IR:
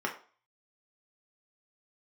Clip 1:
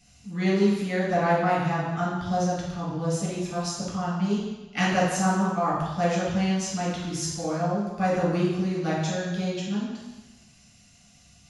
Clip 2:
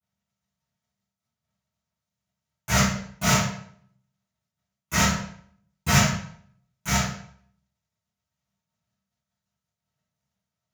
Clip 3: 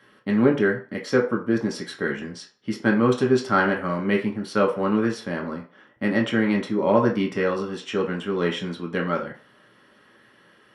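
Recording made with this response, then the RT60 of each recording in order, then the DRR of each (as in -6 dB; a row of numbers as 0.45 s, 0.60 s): 3; 1.1 s, 0.60 s, 0.40 s; -7.0 dB, -19.5 dB, -0.5 dB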